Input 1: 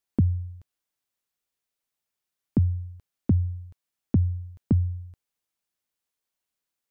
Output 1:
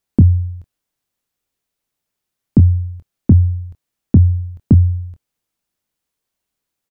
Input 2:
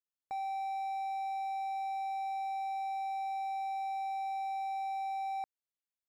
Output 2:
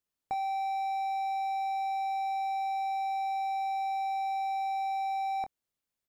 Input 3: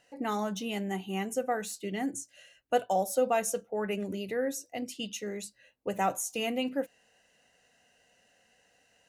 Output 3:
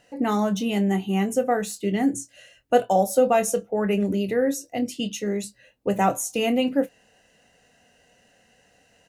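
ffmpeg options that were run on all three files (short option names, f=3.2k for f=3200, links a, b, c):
-filter_complex "[0:a]lowshelf=f=440:g=7.5,asplit=2[a][b];[b]adelay=25,volume=-11dB[c];[a][c]amix=inputs=2:normalize=0,volume=5dB"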